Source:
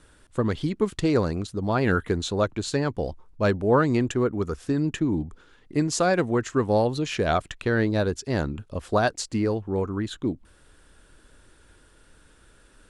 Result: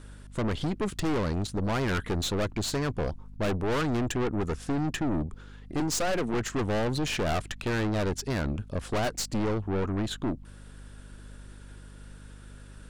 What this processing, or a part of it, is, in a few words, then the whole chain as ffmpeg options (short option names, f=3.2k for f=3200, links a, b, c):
valve amplifier with mains hum: -filter_complex "[0:a]asettb=1/sr,asplit=3[a][b][c];[a]atrim=end=5.804[d];[b]atrim=start=5.8:end=6.34,asetpts=PTS-STARTPTS,afade=t=in:d=0.004:c=qsin,afade=t=out:st=0.536:d=0.004:c=qsin,highpass=f=160:w=0.5412,highpass=f=160:w=1.3066[e];[c]atrim=start=6.336[f];[d][e]acrossfade=d=0.004:c1=hsin:c2=qsin[g];[g][f]acrossfade=d=0.004:c1=qsin:c2=hsin,aeval=exprs='(tanh(31.6*val(0)+0.5)-tanh(0.5))/31.6':c=same,aeval=exprs='val(0)+0.00316*(sin(2*PI*50*n/s)+sin(2*PI*2*50*n/s)/2+sin(2*PI*3*50*n/s)/3+sin(2*PI*4*50*n/s)/4+sin(2*PI*5*50*n/s)/5)':c=same,volume=4.5dB"